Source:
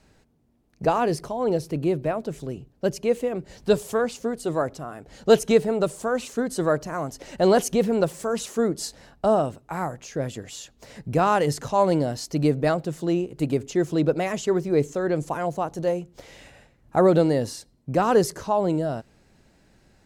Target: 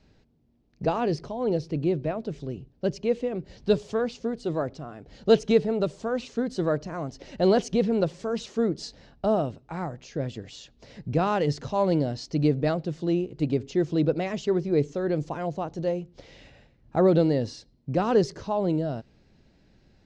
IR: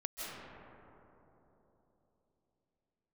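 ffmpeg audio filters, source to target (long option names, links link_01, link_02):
-af "lowpass=frequency=5200:width=0.5412,lowpass=frequency=5200:width=1.3066,equalizer=frequency=1200:width_type=o:width=2.3:gain=-7"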